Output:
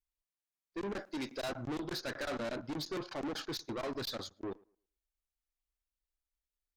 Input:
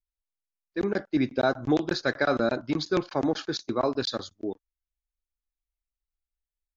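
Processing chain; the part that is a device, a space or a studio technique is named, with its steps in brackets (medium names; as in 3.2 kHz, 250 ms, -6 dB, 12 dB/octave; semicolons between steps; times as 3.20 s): 0.99–1.50 s: tone controls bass -14 dB, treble +12 dB; rockabilly slapback (valve stage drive 33 dB, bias 0.25; tape echo 112 ms, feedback 27%, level -23 dB, low-pass 1.6 kHz); trim -2 dB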